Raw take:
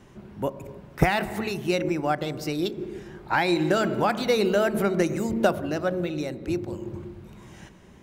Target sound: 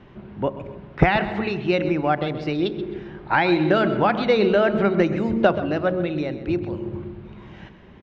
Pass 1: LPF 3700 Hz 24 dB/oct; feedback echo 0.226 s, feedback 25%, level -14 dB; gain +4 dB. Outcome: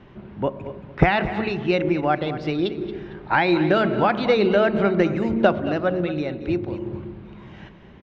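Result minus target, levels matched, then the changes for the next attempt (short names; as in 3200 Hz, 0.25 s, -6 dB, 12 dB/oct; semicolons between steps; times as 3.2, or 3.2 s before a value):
echo 96 ms late
change: feedback echo 0.13 s, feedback 25%, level -14 dB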